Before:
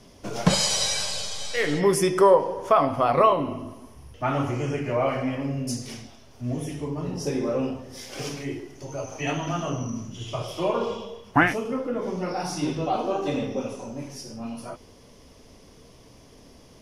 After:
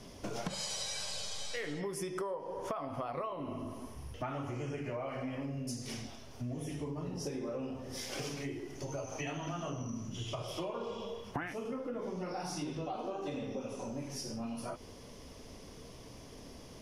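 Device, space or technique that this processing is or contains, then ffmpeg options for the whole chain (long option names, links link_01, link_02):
serial compression, leveller first: -af "acompressor=threshold=-25dB:ratio=2,acompressor=threshold=-37dB:ratio=5"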